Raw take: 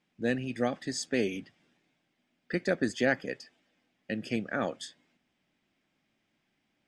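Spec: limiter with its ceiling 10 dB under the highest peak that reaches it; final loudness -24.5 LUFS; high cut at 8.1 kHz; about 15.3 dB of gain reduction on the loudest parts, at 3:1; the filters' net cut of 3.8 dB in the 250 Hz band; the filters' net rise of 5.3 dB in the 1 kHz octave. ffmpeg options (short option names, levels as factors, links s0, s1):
-af "lowpass=8100,equalizer=f=250:t=o:g=-5,equalizer=f=1000:t=o:g=8.5,acompressor=threshold=0.00794:ratio=3,volume=13.3,alimiter=limit=0.266:level=0:latency=1"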